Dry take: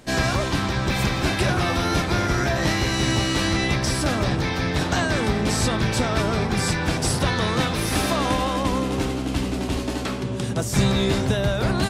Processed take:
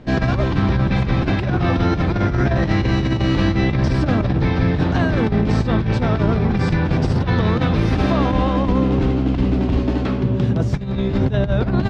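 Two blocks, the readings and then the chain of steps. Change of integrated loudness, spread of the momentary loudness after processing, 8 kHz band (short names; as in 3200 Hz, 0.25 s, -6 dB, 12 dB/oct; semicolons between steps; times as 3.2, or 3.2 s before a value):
+4.0 dB, 2 LU, under -15 dB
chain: low shelf 400 Hz +9.5 dB; negative-ratio compressor -16 dBFS, ratio -0.5; air absorption 220 m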